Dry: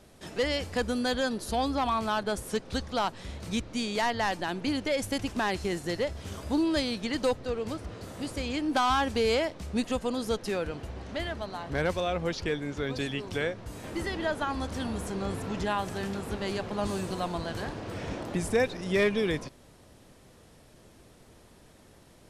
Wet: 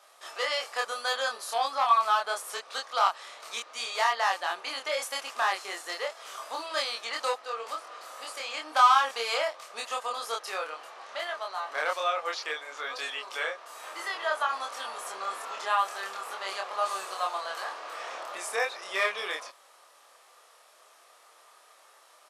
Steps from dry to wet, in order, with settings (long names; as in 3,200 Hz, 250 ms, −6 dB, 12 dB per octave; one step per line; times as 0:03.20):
high-pass filter 630 Hz 24 dB per octave
parametric band 1,200 Hz +11.5 dB 0.23 octaves
double-tracking delay 26 ms −2 dB